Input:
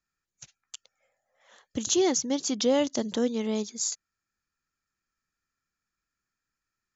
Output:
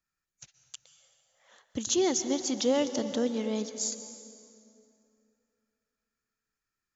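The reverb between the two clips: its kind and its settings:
dense smooth reverb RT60 2.7 s, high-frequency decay 0.7×, pre-delay 110 ms, DRR 10 dB
level −2.5 dB

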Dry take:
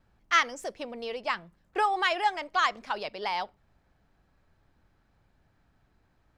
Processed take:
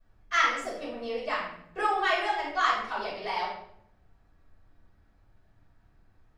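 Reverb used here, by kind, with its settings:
rectangular room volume 160 cubic metres, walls mixed, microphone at 5.4 metres
level −15 dB

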